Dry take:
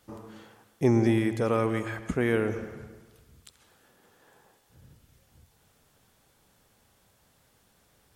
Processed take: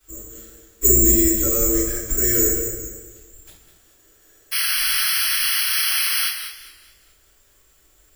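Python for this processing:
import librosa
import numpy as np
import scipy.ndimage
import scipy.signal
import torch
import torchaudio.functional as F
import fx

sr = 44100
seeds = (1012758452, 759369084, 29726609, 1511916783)

p1 = fx.octave_divider(x, sr, octaves=2, level_db=-4.0)
p2 = fx.peak_eq(p1, sr, hz=2600.0, db=-3.5, octaves=0.77)
p3 = fx.spec_paint(p2, sr, seeds[0], shape='noise', start_s=4.51, length_s=1.77, low_hz=780.0, high_hz=3400.0, level_db=-26.0)
p4 = fx.fixed_phaser(p3, sr, hz=380.0, stages=4)
p5 = (np.kron(p4[::6], np.eye(6)[0]) * 6)[:len(p4)]
p6 = p5 + fx.echo_single(p5, sr, ms=197, db=-12.0, dry=0)
p7 = fx.room_shoebox(p6, sr, seeds[1], volume_m3=51.0, walls='mixed', distance_m=3.4)
p8 = fx.echo_warbled(p7, sr, ms=209, feedback_pct=38, rate_hz=2.8, cents=99, wet_db=-13.5)
y = p8 * librosa.db_to_amplitude(-13.0)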